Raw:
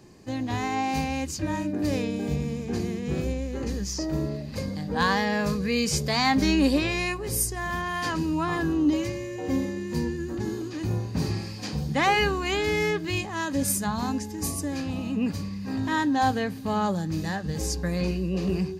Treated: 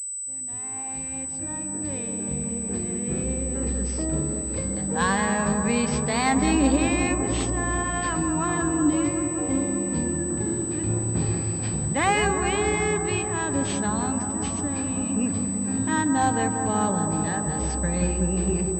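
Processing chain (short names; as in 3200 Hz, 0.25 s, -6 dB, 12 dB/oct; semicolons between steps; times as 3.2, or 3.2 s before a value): opening faded in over 4.05 s; analogue delay 0.188 s, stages 2048, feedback 78%, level -6.5 dB; pulse-width modulation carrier 8000 Hz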